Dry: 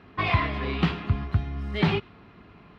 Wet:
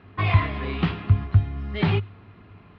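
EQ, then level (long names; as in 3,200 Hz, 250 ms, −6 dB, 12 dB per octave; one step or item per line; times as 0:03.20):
high-frequency loss of the air 280 metres
parametric band 100 Hz +12.5 dB 0.29 octaves
high-shelf EQ 4,200 Hz +11.5 dB
0.0 dB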